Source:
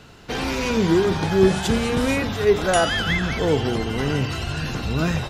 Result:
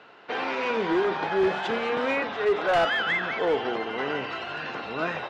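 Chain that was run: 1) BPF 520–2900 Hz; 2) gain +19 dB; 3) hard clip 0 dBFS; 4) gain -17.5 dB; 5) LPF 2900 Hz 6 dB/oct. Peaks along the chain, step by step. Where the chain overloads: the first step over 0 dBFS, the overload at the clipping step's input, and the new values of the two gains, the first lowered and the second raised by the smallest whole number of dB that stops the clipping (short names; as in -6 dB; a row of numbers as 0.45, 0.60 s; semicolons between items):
-10.0, +9.0, 0.0, -17.5, -17.5 dBFS; step 2, 9.0 dB; step 2 +10 dB, step 4 -8.5 dB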